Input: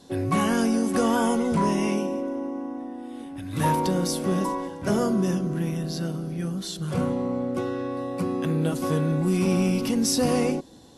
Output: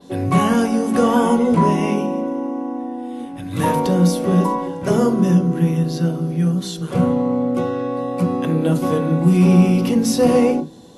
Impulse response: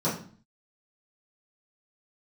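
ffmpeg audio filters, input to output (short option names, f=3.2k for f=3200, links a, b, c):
-filter_complex "[0:a]adynamicequalizer=threshold=0.00316:dfrequency=7400:dqfactor=0.79:tfrequency=7400:tqfactor=0.79:attack=5:release=100:ratio=0.375:range=2.5:mode=cutabove:tftype=bell,asplit=2[a][b];[1:a]atrim=start_sample=2205,afade=t=out:st=0.14:d=0.01,atrim=end_sample=6615[c];[b][c]afir=irnorm=-1:irlink=0,volume=-17dB[d];[a][d]amix=inputs=2:normalize=0,volume=4.5dB"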